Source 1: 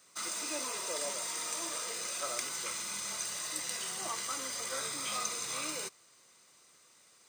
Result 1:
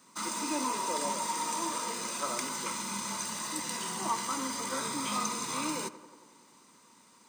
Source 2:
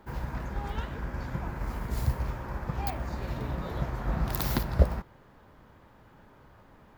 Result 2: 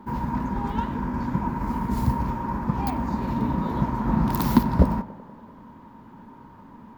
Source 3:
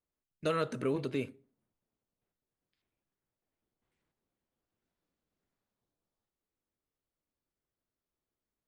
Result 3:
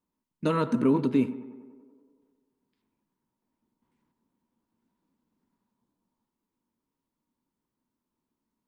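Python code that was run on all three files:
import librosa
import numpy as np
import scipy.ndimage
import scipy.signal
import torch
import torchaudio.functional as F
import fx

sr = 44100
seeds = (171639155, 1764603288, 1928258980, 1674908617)

y = fx.small_body(x, sr, hz=(230.0, 940.0), ring_ms=30, db=17)
y = fx.echo_tape(y, sr, ms=94, feedback_pct=76, wet_db=-15, lp_hz=2200.0, drive_db=3.0, wow_cents=27)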